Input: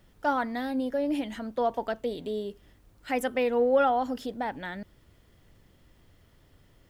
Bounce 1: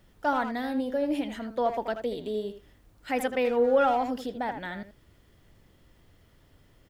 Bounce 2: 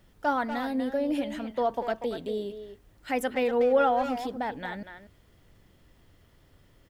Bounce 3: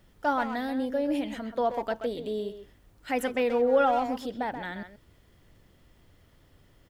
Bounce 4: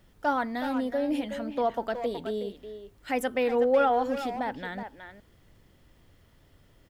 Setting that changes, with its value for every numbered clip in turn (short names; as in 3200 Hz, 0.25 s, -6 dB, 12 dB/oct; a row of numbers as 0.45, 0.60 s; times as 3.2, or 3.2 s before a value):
speakerphone echo, time: 80, 240, 130, 370 ms